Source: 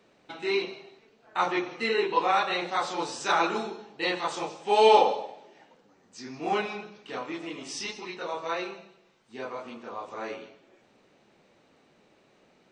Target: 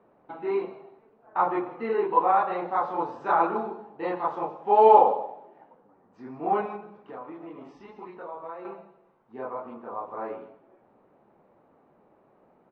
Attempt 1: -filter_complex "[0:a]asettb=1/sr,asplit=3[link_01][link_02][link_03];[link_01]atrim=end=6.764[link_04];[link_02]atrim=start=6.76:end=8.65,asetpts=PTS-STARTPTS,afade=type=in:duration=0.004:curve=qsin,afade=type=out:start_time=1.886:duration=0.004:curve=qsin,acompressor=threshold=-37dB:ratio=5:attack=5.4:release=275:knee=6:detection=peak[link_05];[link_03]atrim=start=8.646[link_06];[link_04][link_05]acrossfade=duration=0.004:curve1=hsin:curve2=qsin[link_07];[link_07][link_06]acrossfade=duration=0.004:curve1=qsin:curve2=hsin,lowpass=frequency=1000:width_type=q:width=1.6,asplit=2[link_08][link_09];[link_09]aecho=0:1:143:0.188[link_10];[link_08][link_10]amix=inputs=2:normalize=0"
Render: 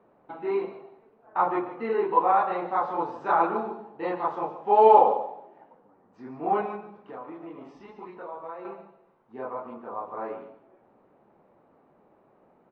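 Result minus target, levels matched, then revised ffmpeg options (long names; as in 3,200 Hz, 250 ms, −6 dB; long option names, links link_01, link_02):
echo-to-direct +10.5 dB
-filter_complex "[0:a]asettb=1/sr,asplit=3[link_01][link_02][link_03];[link_01]atrim=end=6.764[link_04];[link_02]atrim=start=6.76:end=8.65,asetpts=PTS-STARTPTS,afade=type=in:duration=0.004:curve=qsin,afade=type=out:start_time=1.886:duration=0.004:curve=qsin,acompressor=threshold=-37dB:ratio=5:attack=5.4:release=275:knee=6:detection=peak[link_05];[link_03]atrim=start=8.646[link_06];[link_04][link_05]acrossfade=duration=0.004:curve1=hsin:curve2=qsin[link_07];[link_07][link_06]acrossfade=duration=0.004:curve1=qsin:curve2=hsin,lowpass=frequency=1000:width_type=q:width=1.6,asplit=2[link_08][link_09];[link_09]aecho=0:1:143:0.0562[link_10];[link_08][link_10]amix=inputs=2:normalize=0"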